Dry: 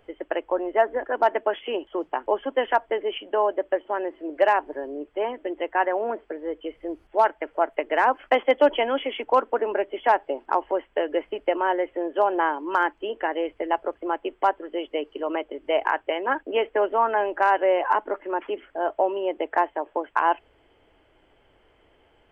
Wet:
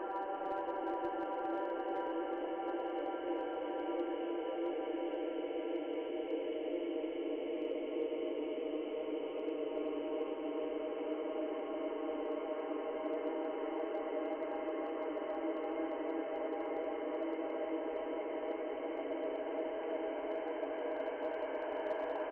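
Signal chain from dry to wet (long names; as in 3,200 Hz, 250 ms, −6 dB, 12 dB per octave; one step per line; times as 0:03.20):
reversed playback
downward compressor 4 to 1, threshold −35 dBFS, peak gain reduction 18 dB
reversed playback
high-frequency loss of the air 490 metres
extreme stretch with random phases 19×, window 1.00 s, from 0:14.53
single-tap delay 348 ms −5 dB
slew-rate limiting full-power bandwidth 21 Hz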